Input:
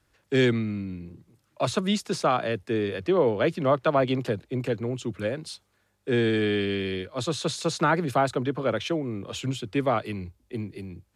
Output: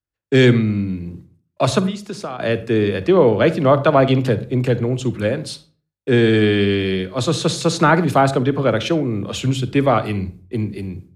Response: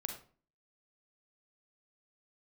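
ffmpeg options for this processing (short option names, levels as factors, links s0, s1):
-filter_complex "[0:a]agate=range=0.0224:threshold=0.00562:ratio=3:detection=peak,asplit=3[s0][s1][s2];[s0]afade=t=out:st=1.85:d=0.02[s3];[s1]acompressor=threshold=0.0178:ratio=6,afade=t=in:st=1.85:d=0.02,afade=t=out:st=2.39:d=0.02[s4];[s2]afade=t=in:st=2.39:d=0.02[s5];[s3][s4][s5]amix=inputs=3:normalize=0,asplit=2[s6][s7];[1:a]atrim=start_sample=2205,lowshelf=f=240:g=10.5[s8];[s7][s8]afir=irnorm=-1:irlink=0,volume=0.531[s9];[s6][s9]amix=inputs=2:normalize=0,volume=1.78"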